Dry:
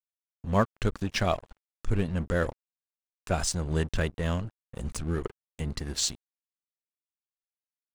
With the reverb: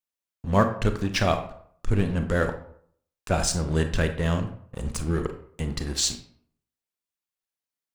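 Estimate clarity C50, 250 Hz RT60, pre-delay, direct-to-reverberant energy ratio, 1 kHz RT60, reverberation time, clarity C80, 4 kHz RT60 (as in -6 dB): 9.5 dB, 0.60 s, 28 ms, 7.0 dB, 0.60 s, 0.60 s, 13.5 dB, 0.40 s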